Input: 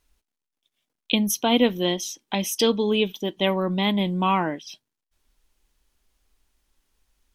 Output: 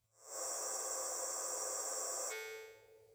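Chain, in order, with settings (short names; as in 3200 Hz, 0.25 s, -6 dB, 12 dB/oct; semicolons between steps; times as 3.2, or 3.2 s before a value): spectral swells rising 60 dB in 1.02 s; bell 560 Hz -2 dB 0.24 oct; speed mistake 33 rpm record played at 78 rpm; transient shaper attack +3 dB, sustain -6 dB; HPF 48 Hz; low shelf 380 Hz -6.5 dB; resonator 110 Hz, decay 0.86 s, harmonics all, mix 90%; compressor 2.5:1, threshold -46 dBFS, peak gain reduction 13 dB; analogue delay 0.203 s, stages 1024, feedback 73%, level -13 dB; non-linear reverb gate 0.43 s rising, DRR -4 dB; spectral freeze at 0.41, 1.90 s; gain +3 dB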